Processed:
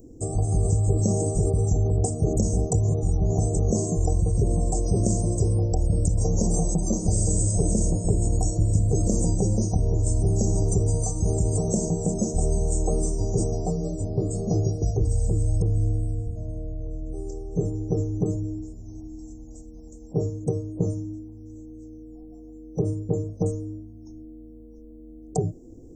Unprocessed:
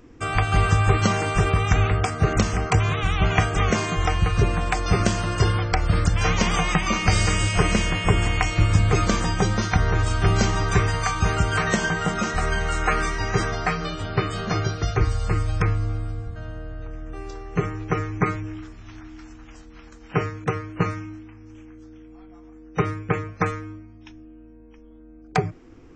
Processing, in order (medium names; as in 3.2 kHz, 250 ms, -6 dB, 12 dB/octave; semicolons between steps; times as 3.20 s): inverse Chebyshev band-stop 1.5–3 kHz, stop band 70 dB; treble shelf 5.5 kHz +8.5 dB; in parallel at -1.5 dB: compressor with a negative ratio -23 dBFS, ratio -0.5; on the sum: trim -4 dB